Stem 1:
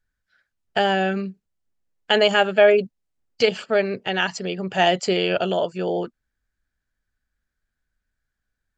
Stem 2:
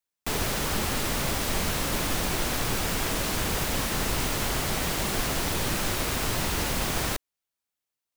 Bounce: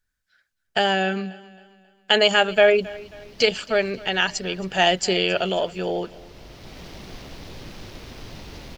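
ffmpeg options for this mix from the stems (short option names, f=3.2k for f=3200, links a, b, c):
-filter_complex "[0:a]highshelf=f=2.3k:g=8,volume=-2dB,asplit=3[a][b][c];[b]volume=-20.5dB[d];[1:a]afwtdn=0.0158,equalizer=f=1.3k:w=0.9:g=-7,adelay=1950,volume=-9.5dB,asplit=2[e][f];[f]volume=-11.5dB[g];[c]apad=whole_len=446079[h];[e][h]sidechaincompress=threshold=-42dB:ratio=4:attack=16:release=596[i];[d][g]amix=inputs=2:normalize=0,aecho=0:1:269|538|807|1076|1345|1614:1|0.41|0.168|0.0689|0.0283|0.0116[j];[a][i][j]amix=inputs=3:normalize=0"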